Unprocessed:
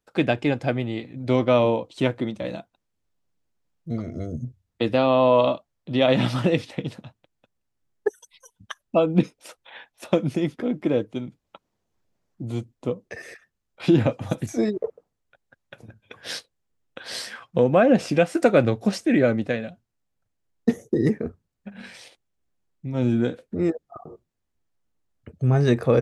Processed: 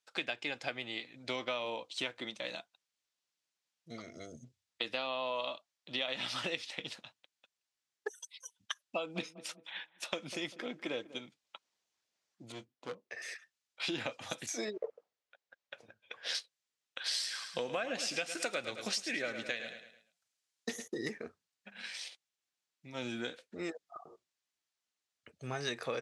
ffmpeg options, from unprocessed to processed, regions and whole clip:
-filter_complex "[0:a]asettb=1/sr,asplit=3[a][b][c];[a]atrim=end=8.964[d];[b]atrim=start=8.96:end=11.26,asetpts=PTS-STARTPTS,afade=t=in:d=0.004:c=qsin,afade=t=out:st=2.296:d=0.004:c=qsin,agate=range=-33dB:threshold=-49dB:ratio=3:release=100:detection=peak,asplit=2[e][f];[f]adelay=196,lowpass=f=880:p=1,volume=-16.5dB,asplit=2[g][h];[h]adelay=196,lowpass=f=880:p=1,volume=0.41,asplit=2[i][j];[j]adelay=196,lowpass=f=880:p=1,volume=0.41,asplit=2[k][l];[l]adelay=196,lowpass=f=880:p=1,volume=0.41[m];[e][g][i][k][m]amix=inputs=5:normalize=0,atrim=end_sample=101430[n];[c]atrim=start=11.256[o];[d][n]acrossfade=d=0.004:c1=hsin:c2=qsin[p];[p][o]acrossfade=d=0.004:c1=qsin:c2=hsin,asettb=1/sr,asplit=3[q][r][s];[q]atrim=end=12.524[t];[r]atrim=start=12.52:end=13.22,asetpts=PTS-STARTPTS,afade=t=in:d=0.004:c=qsin,afade=t=out:st=0.696:d=0.004:c=qsin,lowpass=f=1.5k:p=1,asoftclip=type=hard:threshold=-21.5dB,asplit=2[u][v];[v]adelay=23,volume=-13.5dB[w];[u][w]amix=inputs=2:normalize=0,atrim=end_sample=30870[x];[s]atrim=start=13.216[y];[t][x]acrossfade=d=0.004:c1=hsin:c2=qsin[z];[z][y]acrossfade=d=0.004:c1=qsin:c2=hsin,asettb=1/sr,asplit=3[aa][ab][ac];[aa]atrim=end=14.654[ad];[ab]atrim=start=14.65:end=16.35,asetpts=PTS-STARTPTS,afade=t=in:d=0.004:c=qsin,afade=t=out:st=1.696:d=0.004:c=qsin,lowpass=f=2.8k:p=1,equalizer=f=530:t=o:w=0.86:g=6.5[ae];[ac]atrim=start=16.346[af];[ad][ae]acrossfade=d=0.004:c1=hsin:c2=qsin[ag];[ag][af]acrossfade=d=0.004:c1=qsin:c2=hsin,asettb=1/sr,asplit=3[ah][ai][aj];[ah]atrim=end=17.044[ak];[ai]atrim=start=17.04:end=20.88,asetpts=PTS-STARTPTS,afade=t=in:d=0.004:c=qsin,afade=t=out:st=3.836:d=0.004:c=qsin,highshelf=f=4k:g=7,aecho=1:1:107|214|321|428:0.266|0.109|0.0447|0.0183,atrim=end_sample=169344[al];[aj]atrim=start=20.876[am];[ak][al]acrossfade=d=0.004:c1=hsin:c2=qsin[an];[an][am]acrossfade=d=0.004:c1=qsin:c2=hsin,lowpass=4.9k,aderivative,acompressor=threshold=-43dB:ratio=6,volume=10dB"

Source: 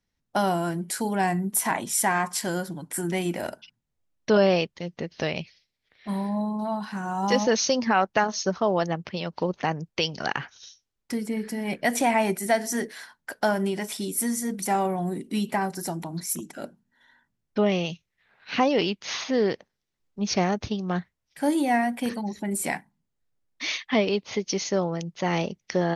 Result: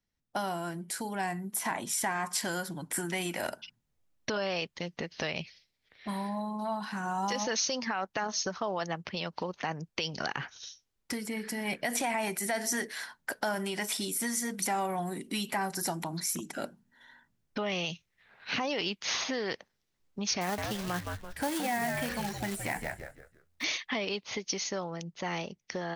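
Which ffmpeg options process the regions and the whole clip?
-filter_complex "[0:a]asettb=1/sr,asplit=3[a][b][c];[a]atrim=end=20.414[d];[b]atrim=start=20.41:end=23.64,asetpts=PTS-STARTPTS,afade=t=in:d=0.004:c=qsin,afade=t=out:st=3.226:d=0.004:c=qsin,acrossover=split=2600[e][f];[f]acompressor=threshold=-44dB:ratio=4:attack=1:release=60[g];[e][g]amix=inputs=2:normalize=0,asplit=5[h][i][j][k][l];[i]adelay=167,afreqshift=-85,volume=-8dB[m];[j]adelay=334,afreqshift=-170,volume=-17.9dB[n];[k]adelay=501,afreqshift=-255,volume=-27.8dB[o];[l]adelay=668,afreqshift=-340,volume=-37.7dB[p];[h][m][n][o][p]amix=inputs=5:normalize=0,atrim=end_sample=142443,acrusher=bits=4:mode=log:mix=0:aa=0.000001[q];[c]atrim=start=23.636[r];[d][q]acrossfade=d=0.004:c1=hsin:c2=qsin[s];[s][r]acrossfade=d=0.004:c1=qsin:c2=hsin,dynaudnorm=f=250:g=17:m=11dB,alimiter=limit=-10.5dB:level=0:latency=1:release=32,acrossover=split=810|6000[t][u][v];[t]acompressor=threshold=-31dB:ratio=4[w];[u]acompressor=threshold=-26dB:ratio=4[x];[v]acompressor=threshold=-28dB:ratio=4[y];[w][x][y]amix=inputs=3:normalize=0,volume=-5.5dB"

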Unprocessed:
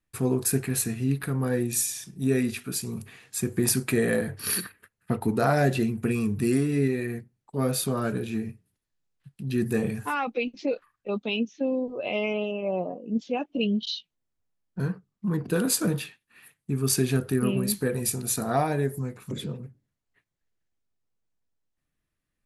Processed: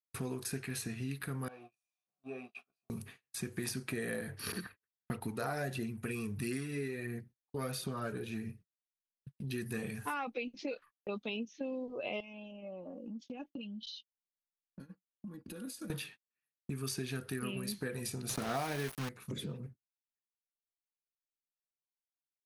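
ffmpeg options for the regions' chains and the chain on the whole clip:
-filter_complex "[0:a]asettb=1/sr,asplit=3[a][b][c];[a]atrim=end=1.484[d];[b]atrim=start=1.48:end=2.9,asetpts=PTS-STARTPTS,afade=t=in:d=0.004:c=qsin,afade=t=out:st=1.416:d=0.004:c=qsin,aeval=exprs='val(0)+0.5*0.0126*sgn(val(0))':c=same,asplit=3[e][f][g];[e]bandpass=f=730:t=q:w=8,volume=0dB[h];[f]bandpass=f=1.09k:t=q:w=8,volume=-6dB[i];[g]bandpass=f=2.44k:t=q:w=8,volume=-9dB[j];[h][i][j]amix=inputs=3:normalize=0,asplit=2[k][l];[l]adelay=15,volume=-7dB[m];[k][m]amix=inputs=2:normalize=0,atrim=end_sample=62622[n];[c]atrim=start=2.896[o];[d][n]acrossfade=d=0.004:c1=hsin:c2=qsin[p];[p][o]acrossfade=d=0.004:c1=qsin:c2=hsin,asettb=1/sr,asplit=3[q][r][s];[q]atrim=end=4.524[t];[r]atrim=start=4.52:end=9.79,asetpts=PTS-STARTPTS,afade=t=in:d=0.004:c=qsin,afade=t=out:st=5.266:d=0.004:c=qsin,aphaser=in_gain=1:out_gain=1:delay=2.8:decay=0.32:speed=1.5:type=triangular,adynamicequalizer=threshold=0.00891:dfrequency=1600:dqfactor=0.7:tfrequency=1600:tqfactor=0.7:attack=5:release=100:ratio=0.375:range=3.5:mode=cutabove:tftype=highshelf[u];[s]atrim=start=9.786[v];[t][u]acrossfade=d=0.004:c1=hsin:c2=qsin[w];[w][v]acrossfade=d=0.004:c1=qsin:c2=hsin,asettb=1/sr,asplit=3[x][y][z];[x]atrim=end=12.204[aa];[y]atrim=start=12.2:end=15.9,asetpts=PTS-STARTPTS,afade=t=in:d=0.004:c=qsin,afade=t=out:st=3.696:d=0.004:c=qsin,equalizer=f=800:t=o:w=2.9:g=-7.5,acompressor=threshold=-39dB:ratio=16:attack=3.2:release=140:knee=1:detection=peak,aecho=1:1:3.6:0.71,atrim=end_sample=163170[ab];[z]atrim=start=15.896[ac];[aa][ab]acrossfade=d=0.004:c1=hsin:c2=qsin[ad];[ad][ac]acrossfade=d=0.004:c1=qsin:c2=hsin,asettb=1/sr,asplit=3[ae][af][ag];[ae]atrim=end=18.294[ah];[af]atrim=start=18.29:end=19.09,asetpts=PTS-STARTPTS,afade=t=in:d=0.004:c=qsin,afade=t=out:st=0.796:d=0.004:c=qsin,highpass=91,acontrast=80,aeval=exprs='val(0)*gte(abs(val(0)),0.0531)':c=same[ai];[ag]atrim=start=19.086[aj];[ah][ai]acrossfade=d=0.004:c1=hsin:c2=qsin[ak];[ak][aj]acrossfade=d=0.004:c1=qsin:c2=hsin,bandreject=f=7.4k:w=8.3,agate=range=-37dB:threshold=-45dB:ratio=16:detection=peak,acrossover=split=1300|7000[al][am][an];[al]acompressor=threshold=-35dB:ratio=4[ao];[am]acompressor=threshold=-39dB:ratio=4[ap];[an]acompressor=threshold=-46dB:ratio=4[aq];[ao][ap][aq]amix=inputs=3:normalize=0,volume=-3dB"

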